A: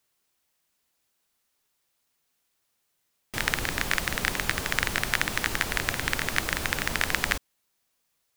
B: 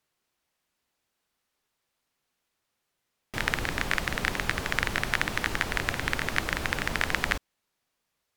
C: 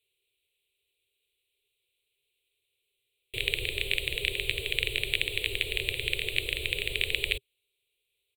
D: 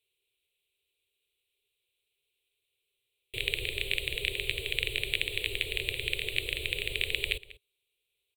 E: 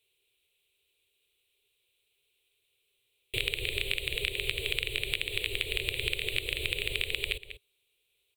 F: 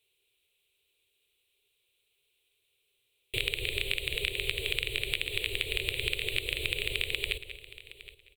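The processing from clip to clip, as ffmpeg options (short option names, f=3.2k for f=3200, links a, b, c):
-af "aemphasis=mode=reproduction:type=cd"
-af "firequalizer=gain_entry='entry(120,0);entry(210,-28);entry(400,8);entry(790,-22);entry(1500,-24);entry(2400,10);entry(3900,10);entry(5500,-30);entry(8000,4)':delay=0.05:min_phase=1,volume=-3.5dB"
-filter_complex "[0:a]asplit=2[a][b];[b]adelay=192.4,volume=-18dB,highshelf=f=4k:g=-4.33[c];[a][c]amix=inputs=2:normalize=0,volume=-2dB"
-af "acompressor=threshold=-32dB:ratio=6,volume=6dB"
-af "aecho=1:1:768|1536:0.141|0.0254"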